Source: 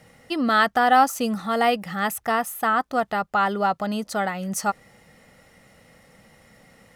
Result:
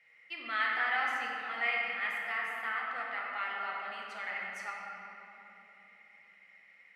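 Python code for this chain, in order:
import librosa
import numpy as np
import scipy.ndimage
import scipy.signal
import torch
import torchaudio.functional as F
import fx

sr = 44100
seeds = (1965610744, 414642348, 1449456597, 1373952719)

y = fx.bandpass_q(x, sr, hz=2200.0, q=7.1)
y = fx.room_shoebox(y, sr, seeds[0], volume_m3=200.0, walls='hard', distance_m=0.78)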